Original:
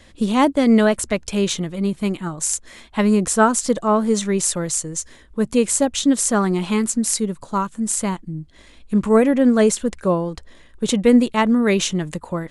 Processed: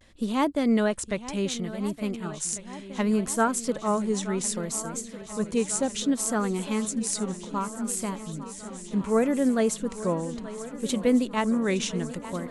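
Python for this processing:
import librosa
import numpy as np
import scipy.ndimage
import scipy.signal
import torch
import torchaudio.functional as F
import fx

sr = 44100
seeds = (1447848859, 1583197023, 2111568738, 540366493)

y = fx.echo_swing(x, sr, ms=1449, ratio=1.5, feedback_pct=67, wet_db=-15)
y = fx.vibrato(y, sr, rate_hz=0.66, depth_cents=58.0)
y = F.gain(torch.from_numpy(y), -8.5).numpy()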